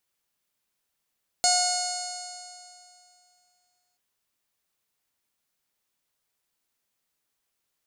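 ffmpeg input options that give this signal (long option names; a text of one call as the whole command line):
ffmpeg -f lavfi -i "aevalsrc='0.075*pow(10,-3*t/2.56)*sin(2*PI*719.32*t)+0.0188*pow(10,-3*t/2.56)*sin(2*PI*1440.56*t)+0.0158*pow(10,-3*t/2.56)*sin(2*PI*2165.62*t)+0.0106*pow(10,-3*t/2.56)*sin(2*PI*2896.4*t)+0.00841*pow(10,-3*t/2.56)*sin(2*PI*3634.77*t)+0.0708*pow(10,-3*t/2.56)*sin(2*PI*4382.57*t)+0.0355*pow(10,-3*t/2.56)*sin(2*PI*5141.57*t)+0.0211*pow(10,-3*t/2.56)*sin(2*PI*5913.55*t)+0.0596*pow(10,-3*t/2.56)*sin(2*PI*6700.19*t)+0.0376*pow(10,-3*t/2.56)*sin(2*PI*7503.14*t)+0.0237*pow(10,-3*t/2.56)*sin(2*PI*8323.97*t)+0.0237*pow(10,-3*t/2.56)*sin(2*PI*9164.22*t)+0.00794*pow(10,-3*t/2.56)*sin(2*PI*10025.33*t)':duration=2.53:sample_rate=44100" out.wav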